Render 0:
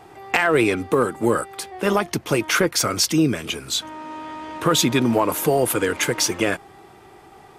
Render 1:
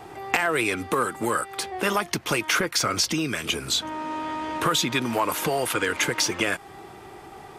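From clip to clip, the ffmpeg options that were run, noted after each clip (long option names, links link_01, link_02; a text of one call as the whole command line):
ffmpeg -i in.wav -filter_complex "[0:a]acrossover=split=940|6200[link_01][link_02][link_03];[link_01]acompressor=threshold=-31dB:ratio=4[link_04];[link_02]acompressor=threshold=-26dB:ratio=4[link_05];[link_03]acompressor=threshold=-38dB:ratio=4[link_06];[link_04][link_05][link_06]amix=inputs=3:normalize=0,volume=3.5dB" out.wav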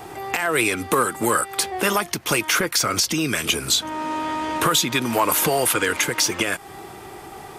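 ffmpeg -i in.wav -af "highshelf=frequency=7400:gain=9.5,alimiter=limit=-12dB:level=0:latency=1:release=285,volume=4.5dB" out.wav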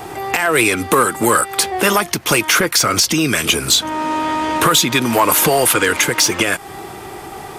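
ffmpeg -i in.wav -af "acontrast=78" out.wav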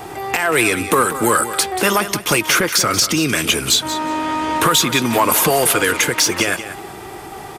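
ffmpeg -i in.wav -af "aecho=1:1:184|368:0.251|0.0427,volume=-1.5dB" out.wav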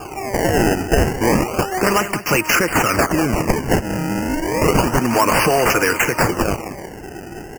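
ffmpeg -i in.wav -af "acrusher=samples=22:mix=1:aa=0.000001:lfo=1:lforange=35.2:lforate=0.31,asuperstop=centerf=3700:order=12:qfactor=2.3" out.wav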